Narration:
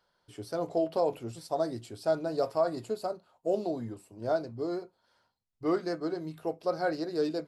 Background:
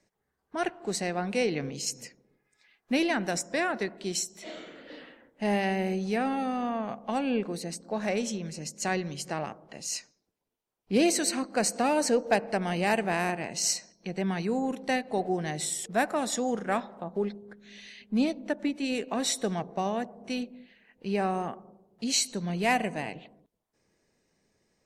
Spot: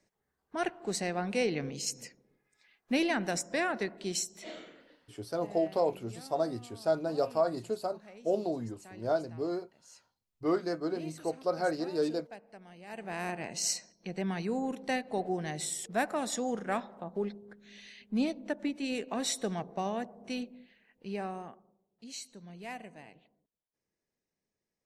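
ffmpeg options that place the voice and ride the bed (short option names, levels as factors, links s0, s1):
-filter_complex "[0:a]adelay=4800,volume=0.944[s0];[1:a]volume=6.68,afade=t=out:st=4.51:d=0.47:silence=0.0944061,afade=t=in:st=12.87:d=0.58:silence=0.112202,afade=t=out:st=20.54:d=1.21:silence=0.223872[s1];[s0][s1]amix=inputs=2:normalize=0"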